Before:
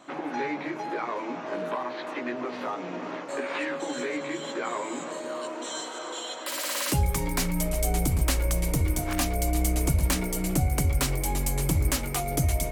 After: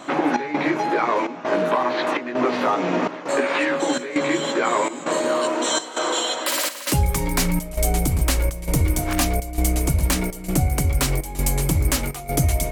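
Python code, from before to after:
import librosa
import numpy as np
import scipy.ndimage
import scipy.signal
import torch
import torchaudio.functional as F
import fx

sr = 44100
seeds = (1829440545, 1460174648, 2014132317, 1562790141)

y = fx.step_gate(x, sr, bpm=166, pattern='xxxx..xxxx', floor_db=-12.0, edge_ms=4.5)
y = fx.rider(y, sr, range_db=10, speed_s=0.5)
y = y * librosa.db_to_amplitude(7.5)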